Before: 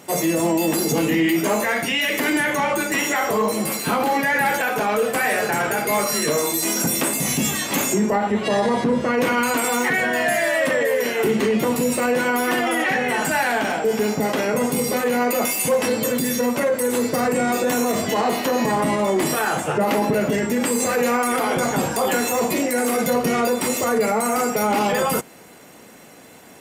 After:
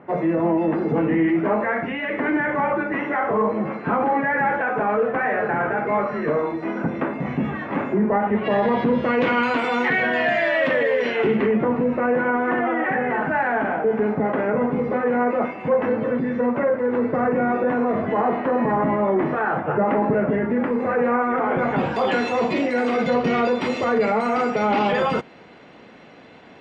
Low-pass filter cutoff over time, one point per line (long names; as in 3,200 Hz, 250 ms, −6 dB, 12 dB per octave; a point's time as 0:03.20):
low-pass filter 24 dB per octave
0:08.04 1,800 Hz
0:08.94 3,500 Hz
0:11.15 3,500 Hz
0:11.62 1,800 Hz
0:21.46 1,800 Hz
0:22.01 3,800 Hz